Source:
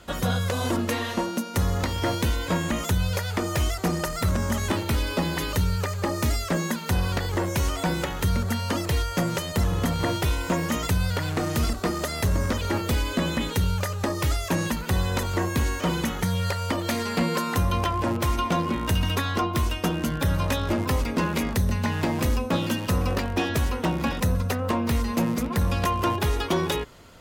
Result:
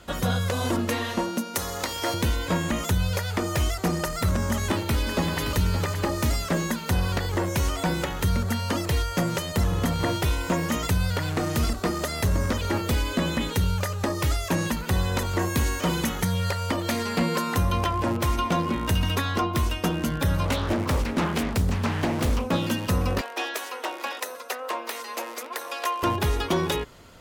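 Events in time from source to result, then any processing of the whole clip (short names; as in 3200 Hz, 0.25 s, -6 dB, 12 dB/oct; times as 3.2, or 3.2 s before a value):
1.55–2.14 tone controls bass -15 dB, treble +6 dB
4.49–5.5 echo throw 0.57 s, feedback 45%, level -8.5 dB
15.39–16.25 high shelf 5100 Hz +5 dB
20.45–22.48 Doppler distortion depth 0.66 ms
23.21–26.03 Bessel high-pass 610 Hz, order 8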